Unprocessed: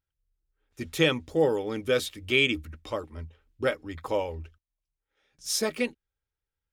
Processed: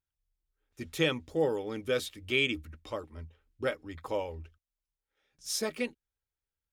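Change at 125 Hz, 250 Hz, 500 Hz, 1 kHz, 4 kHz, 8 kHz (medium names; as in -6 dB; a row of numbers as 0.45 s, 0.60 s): -5.0 dB, -5.0 dB, -5.0 dB, -5.0 dB, -5.0 dB, -5.0 dB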